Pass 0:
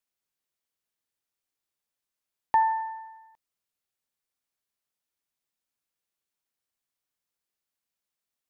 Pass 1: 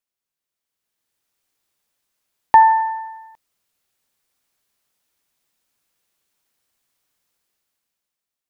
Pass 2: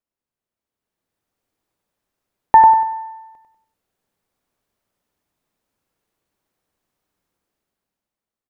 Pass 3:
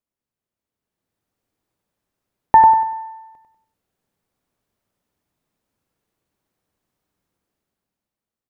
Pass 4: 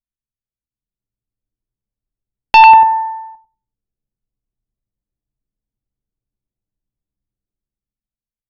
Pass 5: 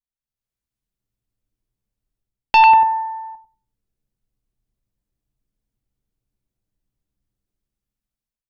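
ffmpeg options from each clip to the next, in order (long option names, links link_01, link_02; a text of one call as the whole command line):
ffmpeg -i in.wav -af "dynaudnorm=framelen=160:gausssize=13:maxgain=14dB" out.wav
ffmpeg -i in.wav -filter_complex "[0:a]tiltshelf=frequency=1400:gain=7.5,bandreject=frequency=48.25:width_type=h:width=4,bandreject=frequency=96.5:width_type=h:width=4,bandreject=frequency=144.75:width_type=h:width=4,asplit=2[link_01][link_02];[link_02]aecho=0:1:97|194|291|388:0.531|0.181|0.0614|0.0209[link_03];[link_01][link_03]amix=inputs=2:normalize=0,volume=-2dB" out.wav
ffmpeg -i in.wav -af "equalizer=frequency=120:width=0.44:gain=5,volume=-1.5dB" out.wav
ffmpeg -i in.wav -filter_complex "[0:a]anlmdn=0.251,asplit=2[link_01][link_02];[link_02]aeval=exprs='0.891*sin(PI/2*3.16*val(0)/0.891)':channel_layout=same,volume=-4.5dB[link_03];[link_01][link_03]amix=inputs=2:normalize=0" out.wav
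ffmpeg -i in.wav -af "dynaudnorm=framelen=140:gausssize=5:maxgain=11dB,volume=-6.5dB" out.wav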